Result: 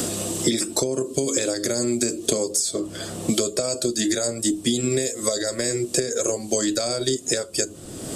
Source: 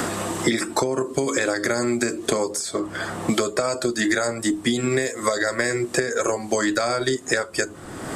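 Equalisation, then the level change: tone controls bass +1 dB, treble +7 dB; band shelf 1300 Hz -11 dB; -1.0 dB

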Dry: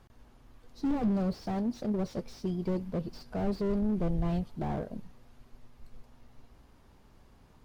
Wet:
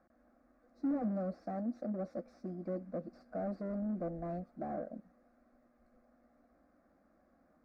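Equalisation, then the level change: band-pass 550 Hz, Q 0.74; fixed phaser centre 620 Hz, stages 8; 0.0 dB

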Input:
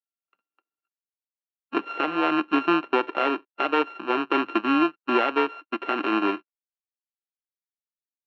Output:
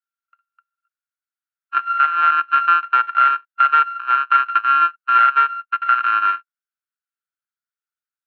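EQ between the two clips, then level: resonant high-pass 1400 Hz, resonance Q 8.9; -3.0 dB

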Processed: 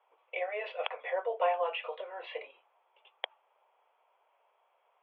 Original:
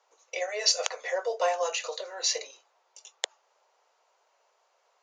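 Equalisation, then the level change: rippled Chebyshev low-pass 3400 Hz, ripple 6 dB; 0.0 dB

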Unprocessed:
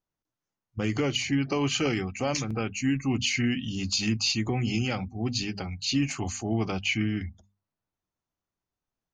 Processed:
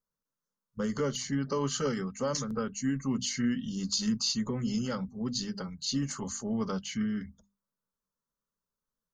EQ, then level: fixed phaser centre 490 Hz, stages 8; 0.0 dB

